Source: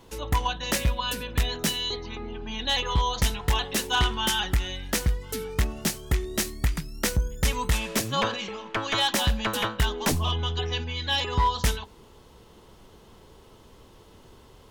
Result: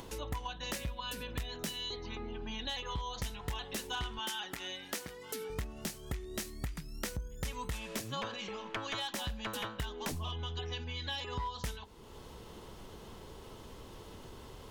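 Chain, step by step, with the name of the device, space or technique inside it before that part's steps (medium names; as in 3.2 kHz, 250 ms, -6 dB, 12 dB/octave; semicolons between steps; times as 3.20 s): 4.19–5.50 s: high-pass 270 Hz 12 dB/octave; upward and downward compression (upward compressor, threshold -37 dBFS; compression 4:1, threshold -33 dBFS, peak gain reduction 12 dB); trim -4 dB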